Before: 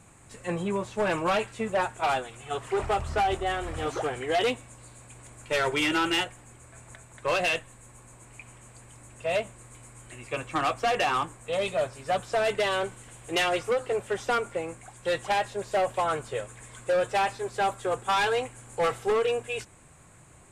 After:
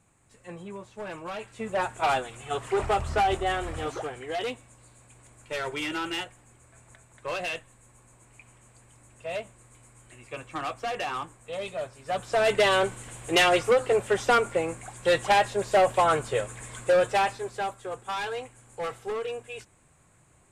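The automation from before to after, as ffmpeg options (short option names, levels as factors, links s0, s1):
-af "volume=4.22,afade=t=in:st=1.36:d=0.66:silence=0.237137,afade=t=out:st=3.57:d=0.56:silence=0.421697,afade=t=in:st=12.02:d=0.61:silence=0.281838,afade=t=out:st=16.75:d=1:silence=0.251189"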